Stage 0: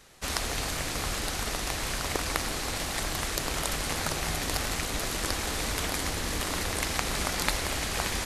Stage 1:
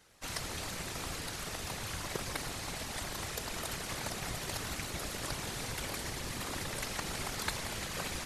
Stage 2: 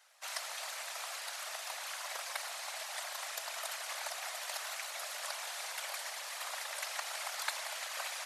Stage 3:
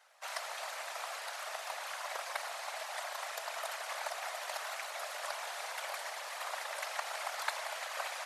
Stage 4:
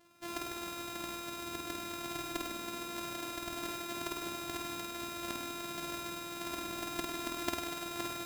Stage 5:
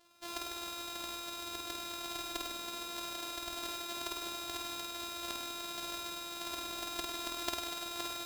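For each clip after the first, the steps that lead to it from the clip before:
random phases in short frames; level −8 dB
elliptic high-pass filter 620 Hz, stop band 60 dB
high-shelf EQ 2,100 Hz −11 dB; level +6 dB
samples sorted by size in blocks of 128 samples; flutter between parallel walls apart 8.6 metres, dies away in 0.99 s
octave-band graphic EQ 125/250/2,000/4,000 Hz −11/−8/−4/+5 dB

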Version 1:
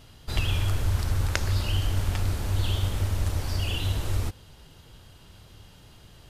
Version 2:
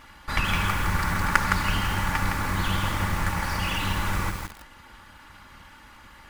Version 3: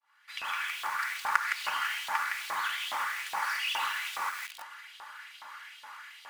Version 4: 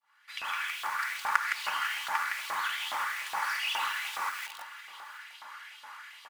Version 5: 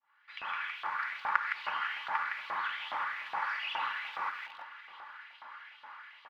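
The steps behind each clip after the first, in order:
lower of the sound and its delayed copy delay 3.5 ms; flat-topped bell 1,400 Hz +13.5 dB; feedback echo at a low word length 163 ms, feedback 35%, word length 6 bits, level −4 dB
fade in at the beginning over 1.39 s; downward compressor 2.5 to 1, threshold −31 dBFS, peak gain reduction 12 dB; auto-filter high-pass saw up 2.4 Hz 730–3,600 Hz
single-tap delay 714 ms −17.5 dB
high-frequency loss of the air 350 metres

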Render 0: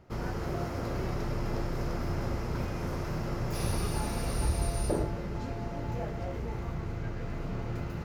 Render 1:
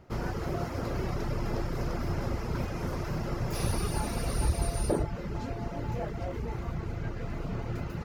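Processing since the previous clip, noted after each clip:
reverb reduction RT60 0.62 s
level +2.5 dB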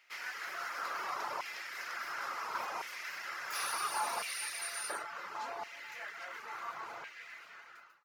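fade-out on the ending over 1.13 s
auto-filter high-pass saw down 0.71 Hz 910–2,300 Hz

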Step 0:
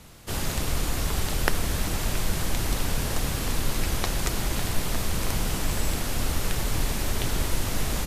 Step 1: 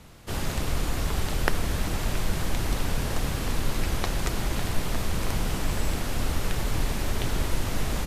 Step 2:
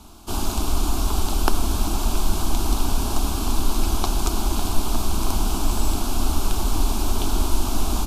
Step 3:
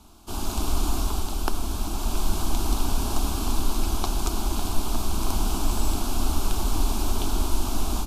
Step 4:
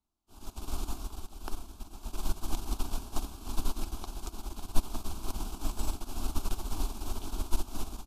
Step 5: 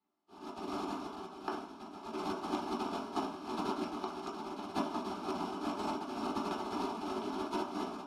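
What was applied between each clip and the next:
high-shelf EQ 4,400 Hz −6.5 dB
phaser with its sweep stopped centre 510 Hz, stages 6; level +7.5 dB
automatic gain control gain up to 5 dB; level −6.5 dB
expander for the loud parts 2.5 to 1, over −36 dBFS
band-pass filter 190–6,600 Hz; convolution reverb RT60 0.45 s, pre-delay 3 ms, DRR −2 dB; level −6.5 dB

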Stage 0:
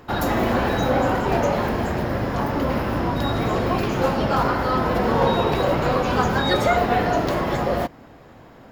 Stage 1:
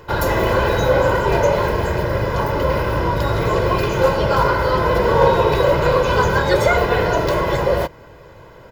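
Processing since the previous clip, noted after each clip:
comb filter 2 ms, depth 73%
level +2.5 dB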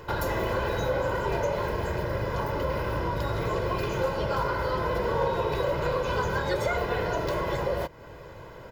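downward compressor 2 to 1, threshold −30 dBFS, peak gain reduction 11.5 dB
level −2 dB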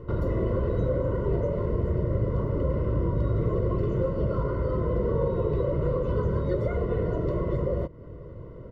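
moving average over 54 samples
level +6.5 dB

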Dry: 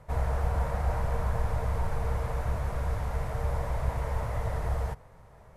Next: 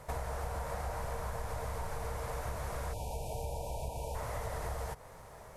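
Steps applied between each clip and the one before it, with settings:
bass and treble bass −7 dB, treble +8 dB
downward compressor 6 to 1, threshold −40 dBFS, peak gain reduction 11.5 dB
time-frequency box erased 0:02.93–0:04.15, 990–2,300 Hz
level +5 dB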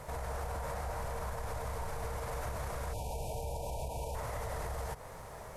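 brickwall limiter −34.5 dBFS, peak gain reduction 10 dB
level +4.5 dB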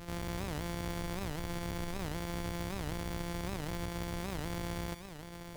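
samples sorted by size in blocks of 256 samples
delay with a high-pass on its return 63 ms, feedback 65%, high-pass 1,700 Hz, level −9 dB
wow of a warped record 78 rpm, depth 250 cents

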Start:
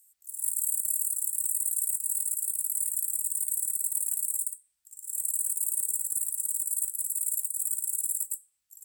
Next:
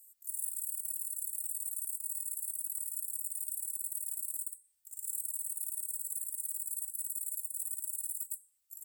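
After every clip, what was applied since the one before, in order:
high-shelf EQ 8,800 Hz +12 dB
comb filter 3.3 ms, depth 65%
downward compressor 12 to 1, threshold −27 dBFS, peak gain reduction 13.5 dB
level −6.5 dB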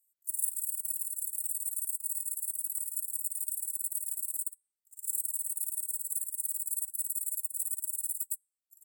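expander for the loud parts 2.5 to 1, over −51 dBFS
level +8.5 dB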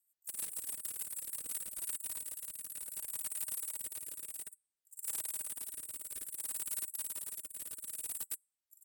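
gain into a clipping stage and back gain 33 dB
rotating-speaker cabinet horn 6.7 Hz, later 0.6 Hz, at 0:01.09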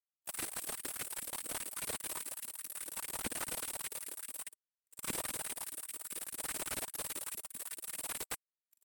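power curve on the samples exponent 2
auto-filter high-pass saw up 4.9 Hz 220–2,600 Hz
slew-rate limiting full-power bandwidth 31 Hz
level +12 dB

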